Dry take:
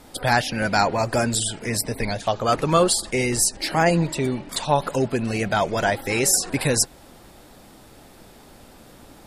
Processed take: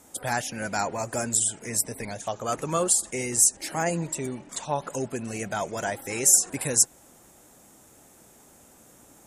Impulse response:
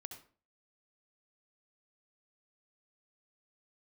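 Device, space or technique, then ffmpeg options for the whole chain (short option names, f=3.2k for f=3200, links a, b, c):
budget condenser microphone: -filter_complex "[0:a]asplit=3[a][b][c];[a]afade=t=out:st=4.47:d=0.02[d];[b]lowpass=6.5k,afade=t=in:st=4.47:d=0.02,afade=t=out:st=4.89:d=0.02[e];[c]afade=t=in:st=4.89:d=0.02[f];[d][e][f]amix=inputs=3:normalize=0,highpass=f=96:p=1,highshelf=f=5.5k:t=q:w=3:g=6.5,volume=-8dB"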